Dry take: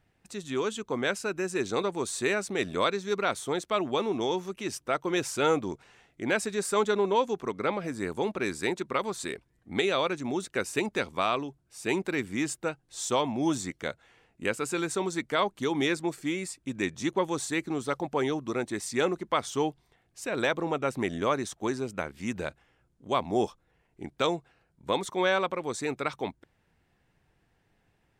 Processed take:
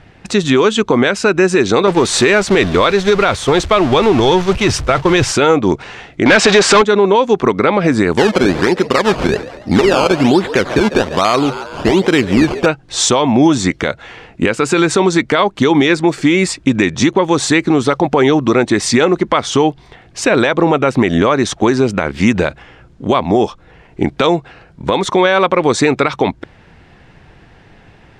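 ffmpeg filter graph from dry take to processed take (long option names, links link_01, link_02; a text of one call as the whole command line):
ffmpeg -i in.wav -filter_complex "[0:a]asettb=1/sr,asplit=3[link_01][link_02][link_03];[link_01]atrim=end=1.874[link_04];[link_02]atrim=start=1.87:end=5.32,asetpts=PTS-STARTPTS,afade=type=in:duration=0.004:curve=qsin,afade=type=out:start_time=3.446:duration=0.004:curve=qsin,aeval=exprs='val(0)+0.5*0.02*sgn(val(0))':channel_layout=same,agate=range=-33dB:threshold=-30dB:ratio=3:release=100:detection=peak,asubboost=boost=8:cutoff=95[link_05];[link_03]atrim=start=5.316[link_06];[link_04][link_05]acrossfade=duration=0.004:curve1=hsin:curve2=qsin[link_07];[link_07][link_06]acrossfade=duration=0.004:curve1=qsin:curve2=hsin,asettb=1/sr,asplit=3[link_08][link_09][link_10];[link_08]atrim=end=6.264[link_11];[link_09]atrim=start=6.26:end=6.82,asetpts=PTS-STARTPTS,afade=type=in:duration=0.004:curve=qsin,afade=type=out:start_time=0.556:duration=0.004:curve=qsin,aeval=exprs='val(0)+0.5*0.0237*sgn(val(0))':channel_layout=same,lowpass=frequency=7800:width=0.5412,lowpass=frequency=7800:width=1.3066,asplit=2[link_12][link_13];[link_13]highpass=frequency=720:poles=1,volume=20dB,asoftclip=type=tanh:threshold=-14dB[link_14];[link_12][link_14]amix=inputs=2:normalize=0,lowpass=frequency=6100:poles=1,volume=-6dB[link_15];[link_10]atrim=start=6.816[link_16];[link_11][link_15]acrossfade=duration=0.004:curve1=hsin:curve2=qsin[link_17];[link_17][link_16]acrossfade=duration=0.004:curve1=qsin:curve2=hsin,asettb=1/sr,asplit=3[link_18][link_19][link_20];[link_18]atrim=end=8.174[link_21];[link_19]atrim=start=8.17:end=12.66,asetpts=PTS-STARTPTS,afade=type=in:duration=0.004:curve=qsin,afade=type=out:start_time=4.486:duration=0.004:curve=qsin,aemphasis=mode=reproduction:type=50fm,acrusher=samples=16:mix=1:aa=0.000001:lfo=1:lforange=16:lforate=1.2,asplit=5[link_22][link_23][link_24][link_25][link_26];[link_23]adelay=139,afreqshift=96,volume=-20dB[link_27];[link_24]adelay=278,afreqshift=192,volume=-26.4dB[link_28];[link_25]adelay=417,afreqshift=288,volume=-32.8dB[link_29];[link_26]adelay=556,afreqshift=384,volume=-39.1dB[link_30];[link_22][link_27][link_28][link_29][link_30]amix=inputs=5:normalize=0,atrim=end_sample=198009[link_31];[link_20]atrim=start=12.656[link_32];[link_21][link_31]acrossfade=duration=0.004:curve1=hsin:curve2=qsin[link_33];[link_33][link_32]acrossfade=duration=0.004:curve1=qsin:curve2=hsin,lowpass=5000,acompressor=threshold=-33dB:ratio=6,alimiter=level_in=27.5dB:limit=-1dB:release=50:level=0:latency=1,volume=-1dB" out.wav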